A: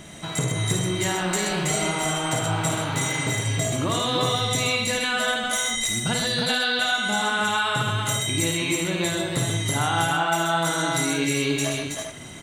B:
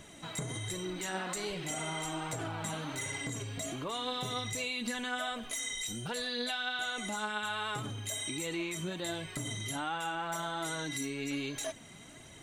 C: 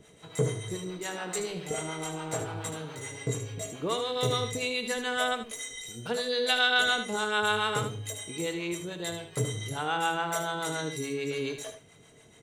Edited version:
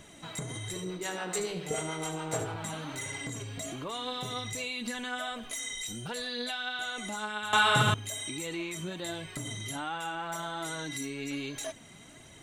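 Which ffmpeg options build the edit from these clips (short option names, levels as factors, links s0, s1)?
-filter_complex "[1:a]asplit=3[s0][s1][s2];[s0]atrim=end=0.762[s3];[2:a]atrim=start=0.758:end=2.562[s4];[s1]atrim=start=2.558:end=7.532[s5];[0:a]atrim=start=7.528:end=7.942[s6];[s2]atrim=start=7.938[s7];[s3][s4]acrossfade=d=0.004:c1=hsin:c2=hsin[s8];[s8][s5]acrossfade=d=0.004:c1=hsin:c2=hsin[s9];[s9][s6]acrossfade=d=0.004:c1=hsin:c2=hsin[s10];[s10][s7]acrossfade=d=0.004:c1=hsin:c2=hsin"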